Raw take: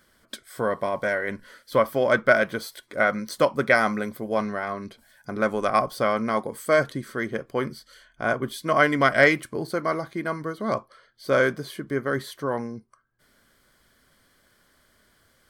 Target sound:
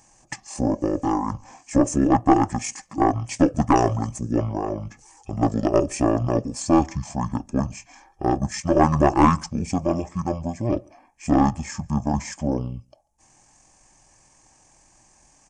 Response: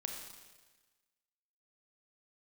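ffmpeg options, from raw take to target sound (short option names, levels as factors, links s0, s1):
-filter_complex "[0:a]equalizer=f=64:t=o:w=0.46:g=10,aeval=exprs='(tanh(2.82*val(0)+0.4)-tanh(0.4))/2.82':c=same,asetrate=23361,aresample=44100,atempo=1.88775,highshelf=f=5100:t=q:w=3:g=7.5,asplit=2[s0][s1];[s1]adelay=139.9,volume=0.0355,highshelf=f=4000:g=-3.15[s2];[s0][s2]amix=inputs=2:normalize=0,volume=1.68"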